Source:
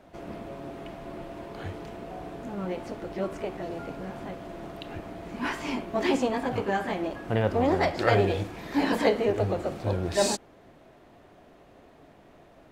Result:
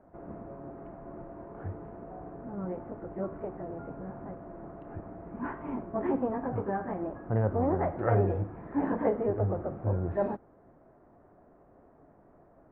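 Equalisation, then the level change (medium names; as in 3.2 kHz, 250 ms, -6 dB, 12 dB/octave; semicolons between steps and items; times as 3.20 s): distance through air 240 m; dynamic bell 110 Hz, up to +5 dB, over -45 dBFS, Q 1.1; low-pass 1.5 kHz 24 dB/octave; -4.0 dB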